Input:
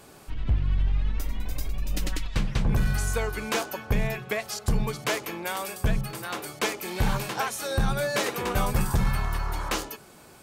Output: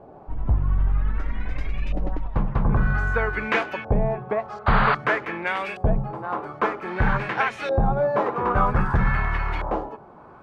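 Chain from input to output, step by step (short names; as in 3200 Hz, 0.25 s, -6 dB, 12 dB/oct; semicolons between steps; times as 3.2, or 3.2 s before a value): painted sound noise, 4.66–4.95, 520–4800 Hz -24 dBFS; LFO low-pass saw up 0.52 Hz 690–2500 Hz; gain +3 dB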